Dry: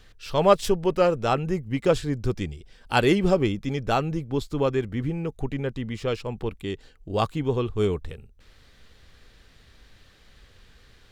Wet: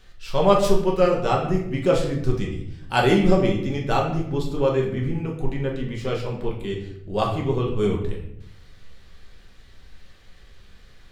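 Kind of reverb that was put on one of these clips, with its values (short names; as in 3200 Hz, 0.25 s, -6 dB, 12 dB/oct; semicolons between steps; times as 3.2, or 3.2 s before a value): shoebox room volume 170 m³, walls mixed, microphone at 1.1 m; gain -2 dB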